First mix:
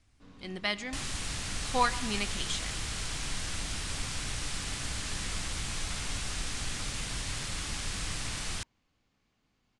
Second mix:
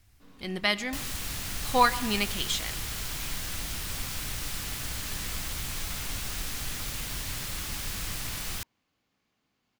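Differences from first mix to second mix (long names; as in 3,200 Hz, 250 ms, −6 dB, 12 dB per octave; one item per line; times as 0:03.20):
speech +5.5 dB
first sound: add high-pass filter 180 Hz 6 dB per octave
master: remove Butterworth low-pass 9,900 Hz 48 dB per octave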